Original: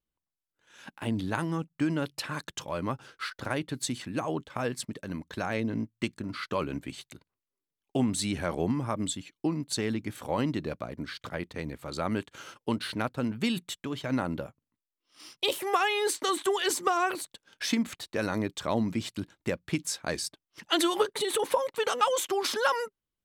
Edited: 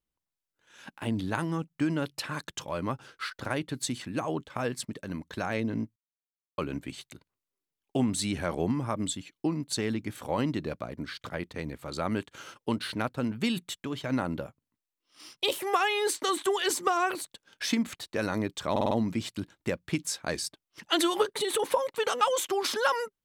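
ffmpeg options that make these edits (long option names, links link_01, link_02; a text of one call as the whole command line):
ffmpeg -i in.wav -filter_complex "[0:a]asplit=7[link_01][link_02][link_03][link_04][link_05][link_06][link_07];[link_01]atrim=end=5.96,asetpts=PTS-STARTPTS,afade=type=out:start_time=5.956:duration=0.004:curve=hsin[link_08];[link_02]atrim=start=5.96:end=6.58,asetpts=PTS-STARTPTS,volume=0[link_09];[link_03]atrim=start=6.58:end=18.762,asetpts=PTS-STARTPTS,afade=type=in:duration=0.004:curve=hsin[link_10];[link_04]atrim=start=18.708:end=18.762[link_11];[link_05]atrim=start=18.708:end=18.762[link_12];[link_06]atrim=start=18.708:end=18.762[link_13];[link_07]atrim=start=18.708[link_14];[link_08][link_09][link_10]concat=n=3:v=0:a=1[link_15];[link_15][link_11]acrossfade=duration=0.004:curve1=hsin:curve2=hsin[link_16];[link_16][link_12]acrossfade=duration=0.004:curve1=hsin:curve2=hsin[link_17];[link_17][link_13]acrossfade=duration=0.004:curve1=hsin:curve2=hsin[link_18];[link_18][link_14]acrossfade=duration=0.004:curve1=hsin:curve2=hsin" out.wav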